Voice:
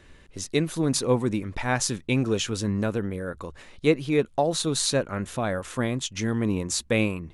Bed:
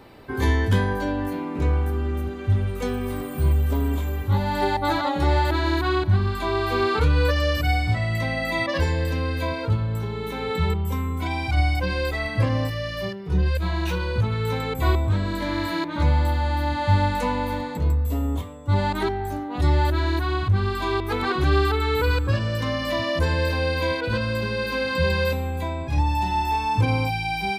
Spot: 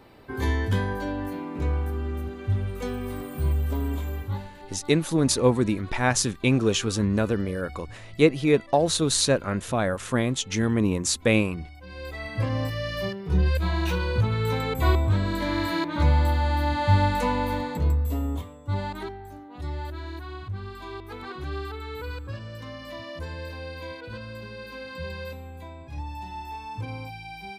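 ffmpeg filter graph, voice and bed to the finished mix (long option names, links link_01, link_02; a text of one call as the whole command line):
ffmpeg -i stem1.wav -i stem2.wav -filter_complex "[0:a]adelay=4350,volume=2.5dB[link_01];[1:a]volume=18dB,afade=type=out:start_time=4.17:duration=0.34:silence=0.11885,afade=type=in:start_time=11.8:duration=1.15:silence=0.0749894,afade=type=out:start_time=17.72:duration=1.5:silence=0.223872[link_02];[link_01][link_02]amix=inputs=2:normalize=0" out.wav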